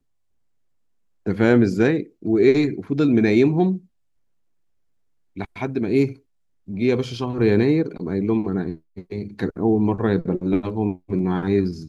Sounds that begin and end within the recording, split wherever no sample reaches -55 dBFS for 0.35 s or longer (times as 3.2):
1.26–3.86
5.36–6.21